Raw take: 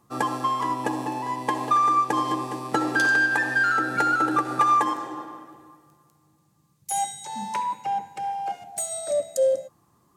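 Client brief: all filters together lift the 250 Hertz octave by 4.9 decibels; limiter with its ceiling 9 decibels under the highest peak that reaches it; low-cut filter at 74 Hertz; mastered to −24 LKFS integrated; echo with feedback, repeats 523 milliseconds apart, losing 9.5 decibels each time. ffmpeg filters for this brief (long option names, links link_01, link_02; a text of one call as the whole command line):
ffmpeg -i in.wav -af "highpass=74,equalizer=frequency=250:width_type=o:gain=6.5,alimiter=limit=-16.5dB:level=0:latency=1,aecho=1:1:523|1046|1569|2092:0.335|0.111|0.0365|0.012,volume=1.5dB" out.wav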